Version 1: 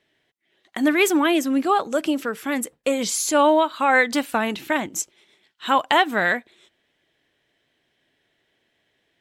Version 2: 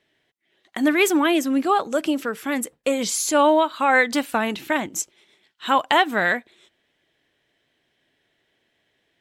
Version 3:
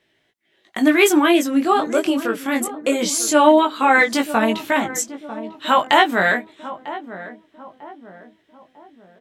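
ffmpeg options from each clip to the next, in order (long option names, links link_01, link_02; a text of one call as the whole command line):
ffmpeg -i in.wav -af anull out.wav
ffmpeg -i in.wav -filter_complex "[0:a]flanger=delay=18:depth=4:speed=0.22,asplit=2[link_01][link_02];[link_02]adelay=947,lowpass=frequency=930:poles=1,volume=-12.5dB,asplit=2[link_03][link_04];[link_04]adelay=947,lowpass=frequency=930:poles=1,volume=0.49,asplit=2[link_05][link_06];[link_06]adelay=947,lowpass=frequency=930:poles=1,volume=0.49,asplit=2[link_07][link_08];[link_08]adelay=947,lowpass=frequency=930:poles=1,volume=0.49,asplit=2[link_09][link_10];[link_10]adelay=947,lowpass=frequency=930:poles=1,volume=0.49[link_11];[link_01][link_03][link_05][link_07][link_09][link_11]amix=inputs=6:normalize=0,volume=6.5dB" out.wav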